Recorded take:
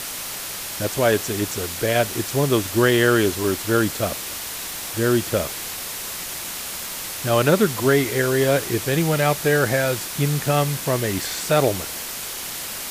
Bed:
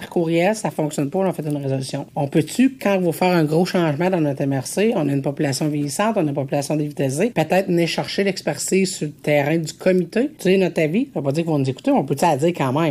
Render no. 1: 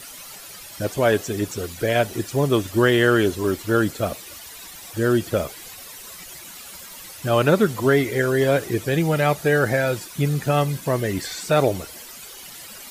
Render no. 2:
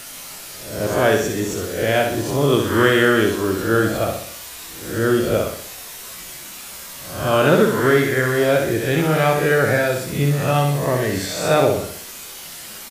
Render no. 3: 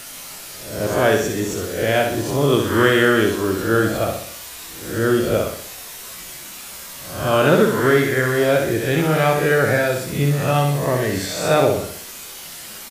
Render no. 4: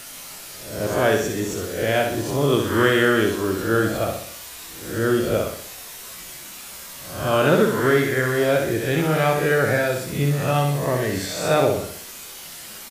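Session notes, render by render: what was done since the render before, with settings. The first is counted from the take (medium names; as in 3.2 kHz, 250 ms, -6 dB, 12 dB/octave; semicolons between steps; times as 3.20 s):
noise reduction 13 dB, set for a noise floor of -31 dBFS
reverse spectral sustain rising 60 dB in 0.63 s; feedback delay 63 ms, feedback 47%, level -5 dB
no audible change
trim -2.5 dB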